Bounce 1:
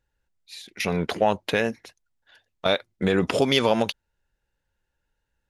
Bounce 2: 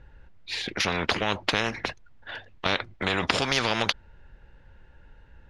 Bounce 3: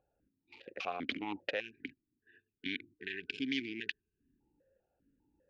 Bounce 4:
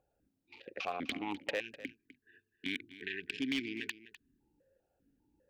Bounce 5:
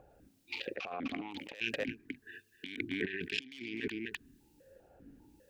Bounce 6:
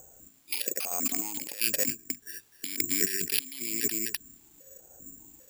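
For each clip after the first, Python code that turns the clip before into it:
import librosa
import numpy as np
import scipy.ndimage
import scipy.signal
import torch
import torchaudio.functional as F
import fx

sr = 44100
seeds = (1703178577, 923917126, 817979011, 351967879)

y1 = scipy.signal.sosfilt(scipy.signal.butter(2, 2500.0, 'lowpass', fs=sr, output='sos'), x)
y1 = fx.low_shelf(y1, sr, hz=210.0, db=6.0)
y1 = fx.spectral_comp(y1, sr, ratio=4.0)
y1 = F.gain(torch.from_numpy(y1), 5.0).numpy()
y2 = fx.wiener(y1, sr, points=41)
y2 = fx.spec_erase(y2, sr, start_s=1.6, length_s=2.8, low_hz=450.0, high_hz=1500.0)
y2 = fx.vowel_held(y2, sr, hz=5.0)
y2 = F.gain(torch.from_numpy(y2), 1.0).numpy()
y3 = np.clip(10.0 ** (27.0 / 20.0) * y2, -1.0, 1.0) / 10.0 ** (27.0 / 20.0)
y3 = y3 + 10.0 ** (-16.0 / 20.0) * np.pad(y3, (int(252 * sr / 1000.0), 0))[:len(y3)]
y3 = F.gain(torch.from_numpy(y3), 1.0).numpy()
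y4 = fx.over_compress(y3, sr, threshold_db=-48.0, ratio=-1.0)
y4 = fx.harmonic_tremolo(y4, sr, hz=1.0, depth_pct=70, crossover_hz=2200.0)
y4 = F.gain(torch.from_numpy(y4), 11.0).numpy()
y5 = (np.kron(y4[::6], np.eye(6)[0]) * 6)[:len(y4)]
y5 = F.gain(torch.from_numpy(y5), 1.0).numpy()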